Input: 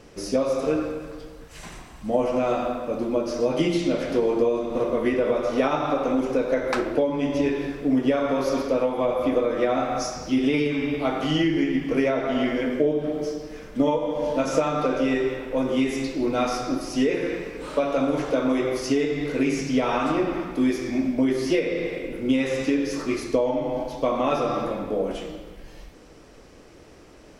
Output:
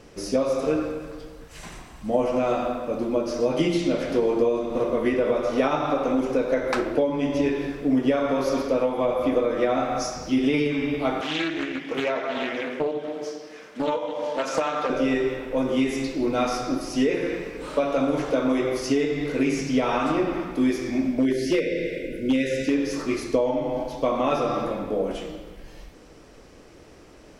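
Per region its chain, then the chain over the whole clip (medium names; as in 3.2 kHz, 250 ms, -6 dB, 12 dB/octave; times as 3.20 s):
11.21–14.90 s: frequency weighting A + loudspeaker Doppler distortion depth 0.36 ms
21.19–22.74 s: brick-wall FIR band-stop 690–1400 Hz + hard clipper -15 dBFS
whole clip: none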